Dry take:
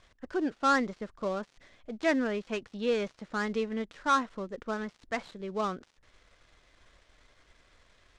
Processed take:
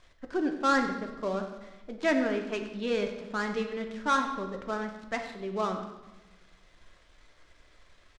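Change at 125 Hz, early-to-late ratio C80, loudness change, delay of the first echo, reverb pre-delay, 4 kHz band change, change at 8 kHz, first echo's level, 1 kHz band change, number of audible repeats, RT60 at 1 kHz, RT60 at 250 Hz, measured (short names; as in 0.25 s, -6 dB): +1.5 dB, 8.5 dB, +1.0 dB, 95 ms, 3 ms, +1.5 dB, +0.5 dB, -13.0 dB, +0.5 dB, 1, 1.1 s, 1.6 s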